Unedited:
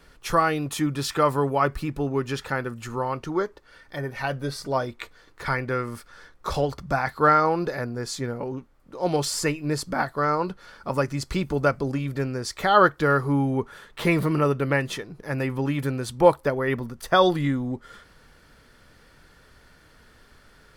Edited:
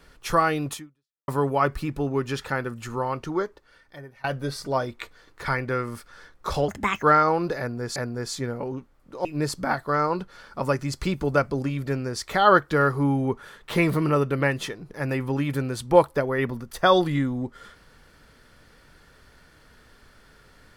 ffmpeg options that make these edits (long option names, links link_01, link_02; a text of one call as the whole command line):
ffmpeg -i in.wav -filter_complex "[0:a]asplit=7[link_01][link_02][link_03][link_04][link_05][link_06][link_07];[link_01]atrim=end=1.28,asetpts=PTS-STARTPTS,afade=type=out:start_time=0.73:duration=0.55:curve=exp[link_08];[link_02]atrim=start=1.28:end=4.24,asetpts=PTS-STARTPTS,afade=type=in:duration=0.004:curve=hsin,afade=type=out:start_time=2:duration=0.96:silence=0.0668344[link_09];[link_03]atrim=start=4.24:end=6.684,asetpts=PTS-STARTPTS,afade=type=in:duration=0.004:curve=hsin:silence=0.0668344[link_10];[link_04]atrim=start=6.68:end=7.2,asetpts=PTS-STARTPTS,asetrate=65709,aresample=44100[link_11];[link_05]atrim=start=7.196:end=8.132[link_12];[link_06]atrim=start=7.758:end=9.052[link_13];[link_07]atrim=start=9.538[link_14];[link_08][link_09][link_10]concat=n=3:v=0:a=1[link_15];[link_15][link_11]acrossfade=duration=0.004:curve1=hsin:curve2=hsin[link_16];[link_16][link_12]acrossfade=duration=0.004:curve1=hsin:curve2=hsin[link_17];[link_17][link_13]acrossfade=duration=0.004:curve1=hsin:curve2=hsin[link_18];[link_18][link_14]acrossfade=duration=0.004:curve1=hsin:curve2=hsin" out.wav